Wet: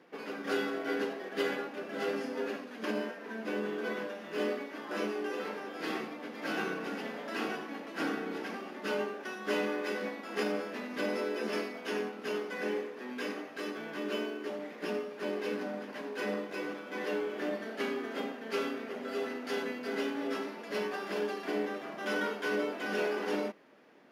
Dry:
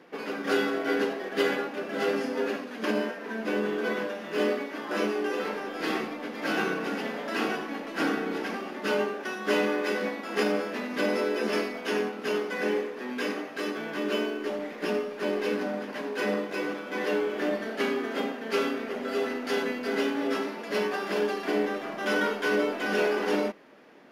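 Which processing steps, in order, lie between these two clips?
high-pass filter 49 Hz
level −6.5 dB

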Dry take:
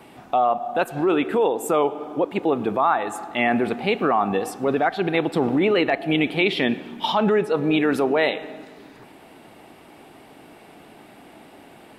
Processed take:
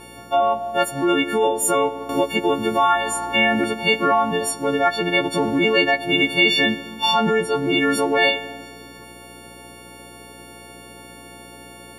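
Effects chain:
every partial snapped to a pitch grid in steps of 4 semitones
hum with harmonics 60 Hz, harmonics 9, −47 dBFS −1 dB per octave
0:02.09–0:03.64: multiband upward and downward compressor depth 70%

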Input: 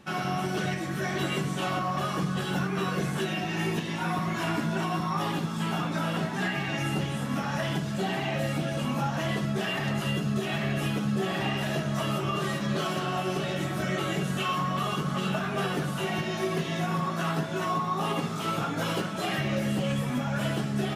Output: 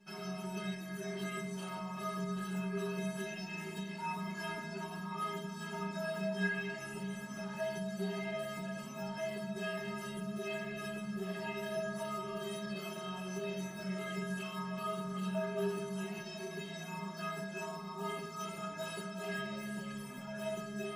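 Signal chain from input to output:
stiff-string resonator 190 Hz, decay 0.66 s, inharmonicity 0.03
level +6 dB

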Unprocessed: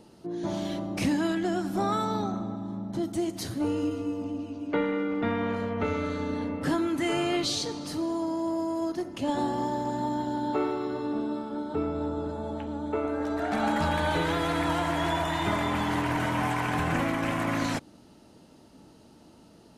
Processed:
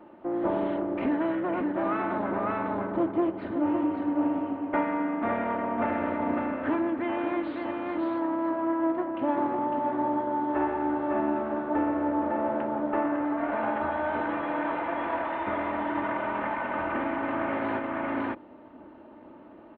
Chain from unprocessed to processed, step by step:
lower of the sound and its delayed copy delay 3.3 ms
high-pass filter 390 Hz 6 dB per octave
single-tap delay 554 ms −5.5 dB
speech leveller within 5 dB 0.5 s
Gaussian smoothing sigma 4.5 samples
level +5 dB

